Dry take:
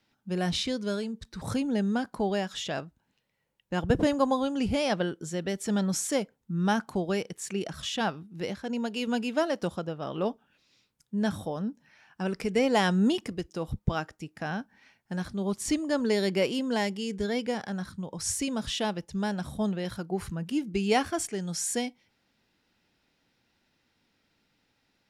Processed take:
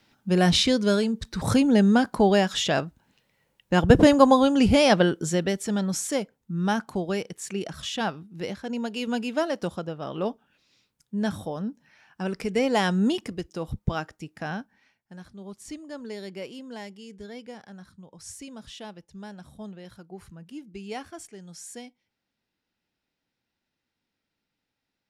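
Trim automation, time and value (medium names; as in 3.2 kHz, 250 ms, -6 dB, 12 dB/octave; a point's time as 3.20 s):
5.32 s +9 dB
5.72 s +1 dB
14.52 s +1 dB
15.14 s -11 dB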